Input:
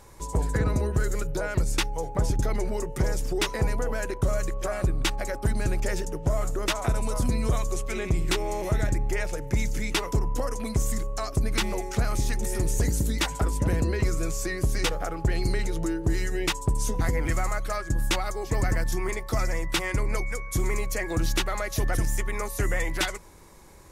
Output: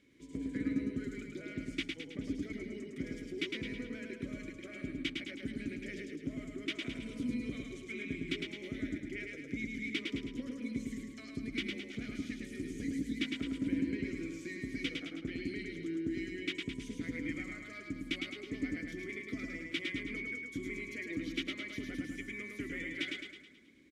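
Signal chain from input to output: vowel filter i; feedback echo 0.107 s, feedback 51%, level -3.5 dB; gain +2 dB

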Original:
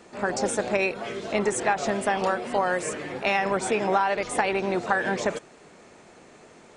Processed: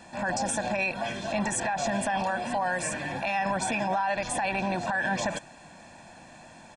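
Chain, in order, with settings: comb 1.2 ms, depth 93%; limiter -19.5 dBFS, peak gain reduction 13.5 dB

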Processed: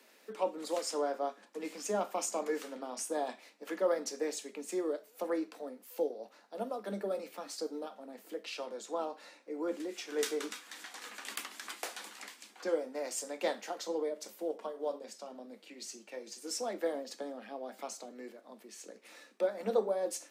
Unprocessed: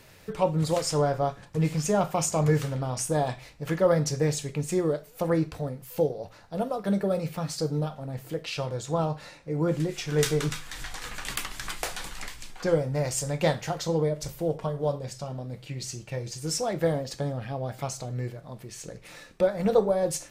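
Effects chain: steep high-pass 210 Hz 96 dB/oct; gain -8 dB

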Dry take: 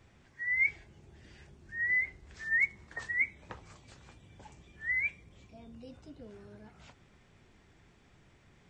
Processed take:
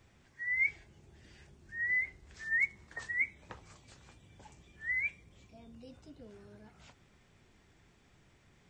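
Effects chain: high shelf 4700 Hz +5 dB; gain -3 dB

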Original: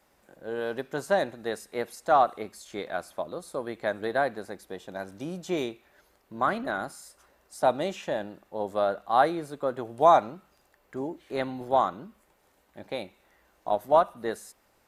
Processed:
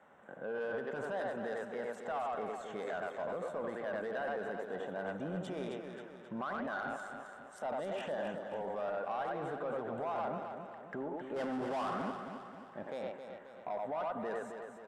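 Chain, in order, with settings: Wiener smoothing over 9 samples; 11.36–12.02 power-law curve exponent 0.5; speakerphone echo 90 ms, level -7 dB; limiter -34 dBFS, peak gain reduction 26 dB; speaker cabinet 160–9400 Hz, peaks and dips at 330 Hz -9 dB, 1500 Hz +3 dB, 2400 Hz -7 dB, 4100 Hz -7 dB, 6600 Hz -8 dB; soft clip -36 dBFS, distortion -19 dB; on a send: feedback echo 0.266 s, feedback 49%, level -7.5 dB; on the sum: gain +6 dB

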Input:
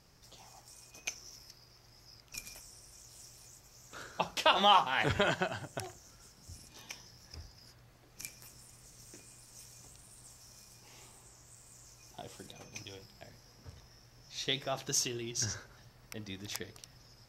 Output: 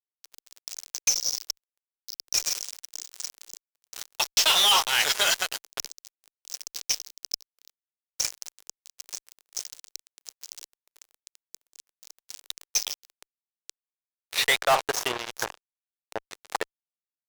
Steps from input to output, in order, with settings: spectral gain 11.71–12.45, 230–3500 Hz -19 dB; band-pass sweep 5700 Hz -> 900 Hz, 13.91–14.81; spectral gain 15.45–16.31, 1100–8100 Hz -11 dB; fuzz box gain 54 dB, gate -51 dBFS; resonant low shelf 340 Hz -6.5 dB, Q 1.5; gain -3.5 dB

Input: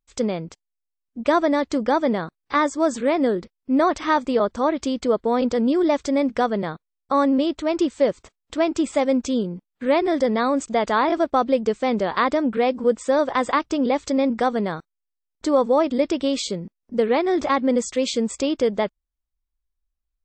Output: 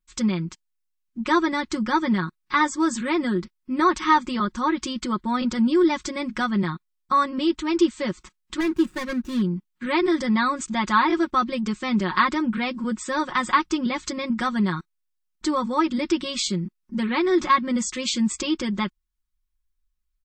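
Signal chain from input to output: 8.6–9.42 median filter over 41 samples; band shelf 570 Hz -16 dB 1.1 oct; comb 5.5 ms, depth 89%

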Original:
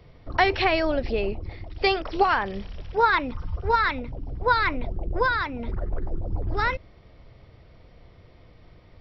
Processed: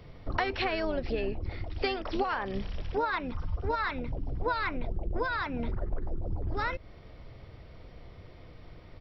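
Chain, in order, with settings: compressor 5:1, threshold -30 dBFS, peak gain reduction 14.5 dB; harmoniser -7 st -10 dB; gain +1.5 dB

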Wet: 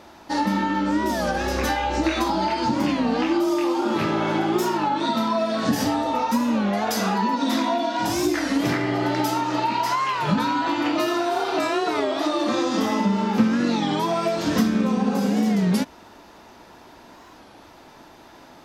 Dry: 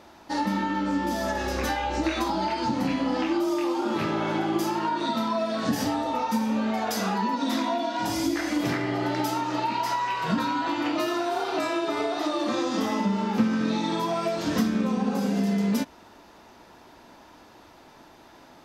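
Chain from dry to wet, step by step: record warp 33 1/3 rpm, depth 160 cents; gain +4 dB

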